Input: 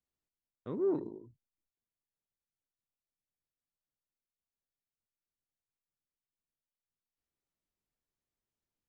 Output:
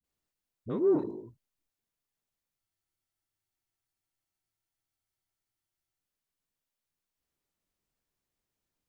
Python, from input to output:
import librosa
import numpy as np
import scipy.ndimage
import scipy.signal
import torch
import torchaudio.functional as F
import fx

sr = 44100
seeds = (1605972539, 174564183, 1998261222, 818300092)

y = fx.dispersion(x, sr, late='highs', ms=42.0, hz=430.0)
y = fx.spec_freeze(y, sr, seeds[0], at_s=2.59, hold_s=3.42)
y = y * 10.0 ** (5.5 / 20.0)